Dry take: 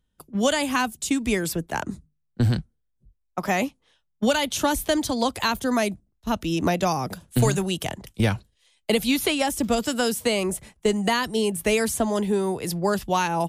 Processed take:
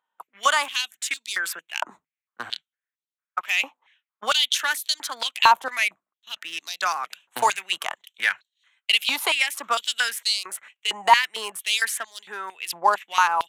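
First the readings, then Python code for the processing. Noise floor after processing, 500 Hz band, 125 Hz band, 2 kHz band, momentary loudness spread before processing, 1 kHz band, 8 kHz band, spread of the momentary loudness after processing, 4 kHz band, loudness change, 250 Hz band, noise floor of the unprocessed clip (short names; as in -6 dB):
under -85 dBFS, -11.0 dB, under -30 dB, +5.5 dB, 7 LU, +4.5 dB, -0.5 dB, 15 LU, +6.0 dB, +1.0 dB, -25.0 dB, -73 dBFS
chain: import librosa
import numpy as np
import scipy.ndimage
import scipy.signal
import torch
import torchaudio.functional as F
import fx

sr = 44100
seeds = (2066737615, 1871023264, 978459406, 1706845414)

y = fx.wiener(x, sr, points=9)
y = fx.filter_held_highpass(y, sr, hz=4.4, low_hz=920.0, high_hz=4200.0)
y = y * librosa.db_to_amplitude(2.0)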